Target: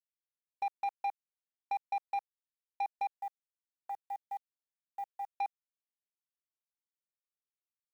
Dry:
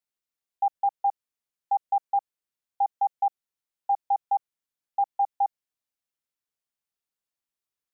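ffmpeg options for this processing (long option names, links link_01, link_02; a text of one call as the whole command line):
ffmpeg -i in.wav -filter_complex "[0:a]afwtdn=0.0251,asettb=1/sr,asplit=3[link_01][link_02][link_03];[link_01]atrim=end=3.124[link_04];[link_02]atrim=start=3.12:end=5.26,asetpts=PTS-STARTPTS,afade=type=in:duration=0.004:curve=qsin,afade=type=out:start_time=2.136:duration=0.004:curve=qsin,equalizer=frequency=890:width=0.33:gain=-13.5[link_05];[link_03]atrim=start=5.256[link_06];[link_04][link_05]acrossfade=duration=0.004:curve1=hsin:curve2=qsin[link_07];[link_07][link_06]acrossfade=duration=0.004:curve1=qsin:curve2=hsin,acompressor=threshold=-27dB:ratio=2.5,acrusher=bits=9:mix=0:aa=0.000001,asoftclip=type=tanh:threshold=-27.5dB,volume=-1.5dB" out.wav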